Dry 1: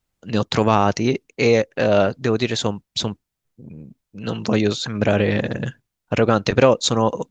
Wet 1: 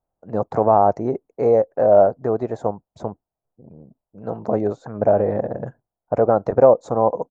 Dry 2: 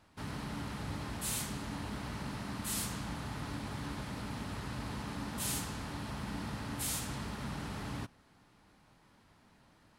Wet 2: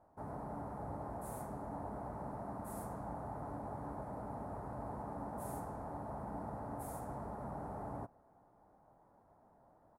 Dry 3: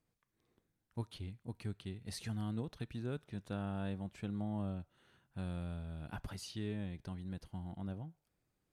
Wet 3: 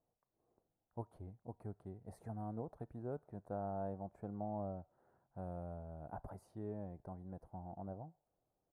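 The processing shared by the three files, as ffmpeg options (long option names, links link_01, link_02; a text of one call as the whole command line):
ffmpeg -i in.wav -af "firequalizer=gain_entry='entry(220,0);entry(690,14);entry(1100,2);entry(2900,-29);entry(9900,-9)':delay=0.05:min_phase=1,volume=-6.5dB" out.wav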